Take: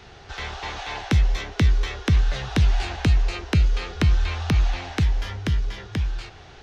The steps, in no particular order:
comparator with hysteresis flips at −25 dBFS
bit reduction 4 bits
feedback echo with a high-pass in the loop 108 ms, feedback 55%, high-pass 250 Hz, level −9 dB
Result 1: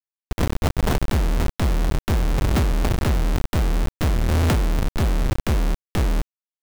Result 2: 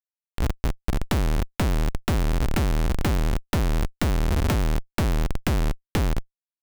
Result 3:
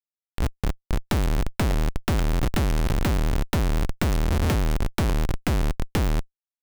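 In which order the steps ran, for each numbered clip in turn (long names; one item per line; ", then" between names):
feedback echo with a high-pass in the loop, then comparator with hysteresis, then bit reduction
feedback echo with a high-pass in the loop, then bit reduction, then comparator with hysteresis
bit reduction, then feedback echo with a high-pass in the loop, then comparator with hysteresis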